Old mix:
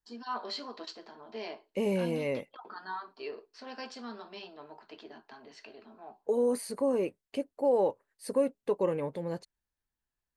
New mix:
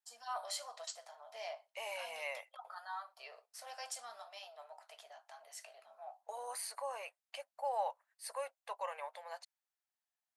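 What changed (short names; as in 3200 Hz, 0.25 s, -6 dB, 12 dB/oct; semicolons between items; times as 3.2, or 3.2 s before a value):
first voice: remove speaker cabinet 420–4800 Hz, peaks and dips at 540 Hz -9 dB, 1000 Hz +7 dB, 1600 Hz +7 dB, 2700 Hz +5 dB, 4400 Hz +7 dB; master: add elliptic high-pass 680 Hz, stop band 50 dB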